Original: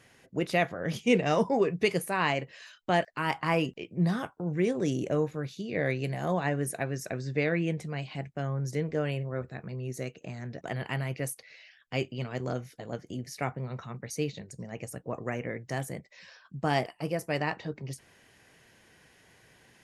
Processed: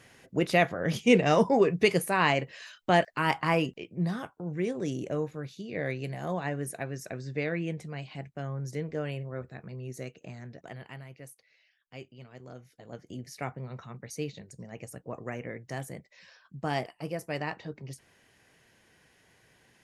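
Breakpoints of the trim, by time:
3.29 s +3 dB
4.09 s -3.5 dB
10.34 s -3.5 dB
11.10 s -14 dB
12.49 s -14 dB
13.13 s -3.5 dB

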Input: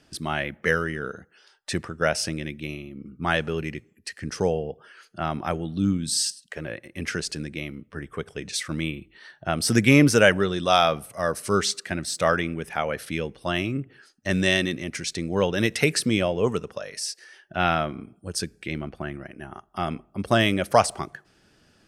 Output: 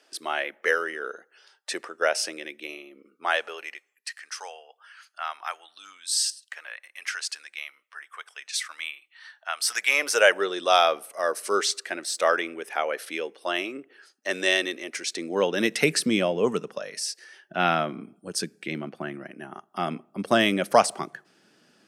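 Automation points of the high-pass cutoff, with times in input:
high-pass 24 dB/octave
2.95 s 390 Hz
4.24 s 930 Hz
9.69 s 930 Hz
10.48 s 350 Hz
14.92 s 350 Hz
15.86 s 170 Hz

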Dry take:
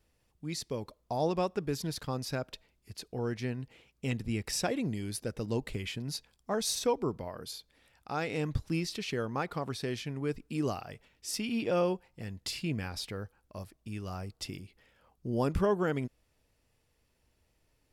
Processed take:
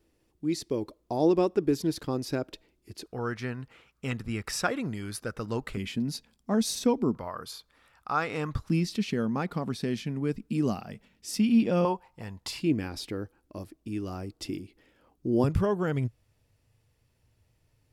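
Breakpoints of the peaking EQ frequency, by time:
peaking EQ +13.5 dB
330 Hz
from 3.06 s 1.3 kHz
from 5.77 s 230 Hz
from 7.15 s 1.2 kHz
from 8.69 s 210 Hz
from 11.85 s 950 Hz
from 12.60 s 310 Hz
from 15.44 s 110 Hz

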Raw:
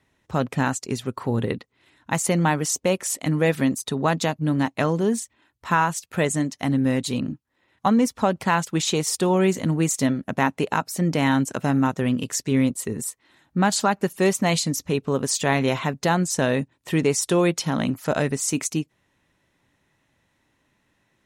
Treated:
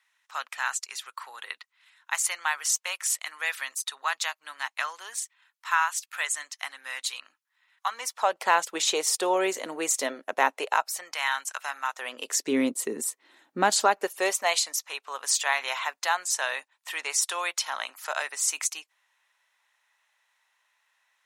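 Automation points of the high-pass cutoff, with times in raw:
high-pass 24 dB/octave
7.89 s 1.1 kHz
8.49 s 450 Hz
10.52 s 450 Hz
11.16 s 1 kHz
11.88 s 1 kHz
12.49 s 290 Hz
13.59 s 290 Hz
14.81 s 860 Hz

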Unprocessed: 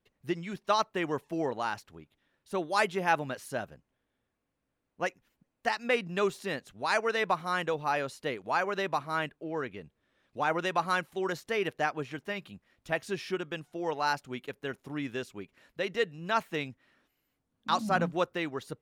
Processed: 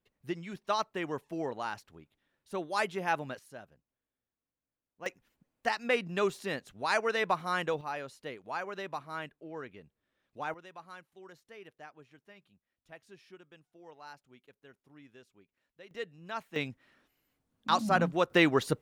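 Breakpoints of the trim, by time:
-4 dB
from 3.39 s -13 dB
from 5.06 s -1 dB
from 7.81 s -8 dB
from 10.54 s -20 dB
from 15.91 s -10 dB
from 16.56 s +1 dB
from 18.30 s +10 dB

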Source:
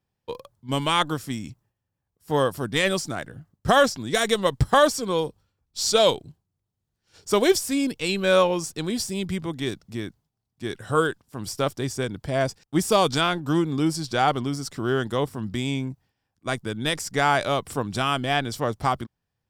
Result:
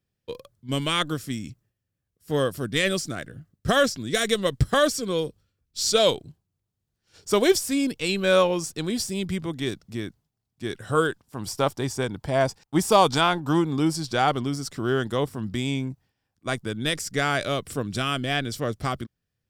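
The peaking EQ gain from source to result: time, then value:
peaking EQ 890 Hz 0.6 oct
5.79 s -12 dB
6.20 s -3 dB
11.04 s -3 dB
11.58 s +6.5 dB
13.56 s +6.5 dB
14.32 s -2.5 dB
16.64 s -2.5 dB
17.06 s -12 dB

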